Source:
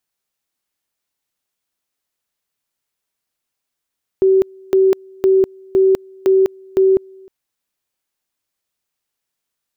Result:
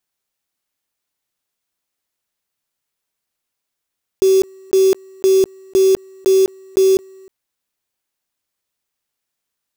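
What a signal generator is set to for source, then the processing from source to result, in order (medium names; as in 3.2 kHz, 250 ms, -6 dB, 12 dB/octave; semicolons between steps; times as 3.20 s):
two-level tone 382 Hz -8.5 dBFS, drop 29 dB, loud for 0.20 s, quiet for 0.31 s, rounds 6
block-companded coder 3-bit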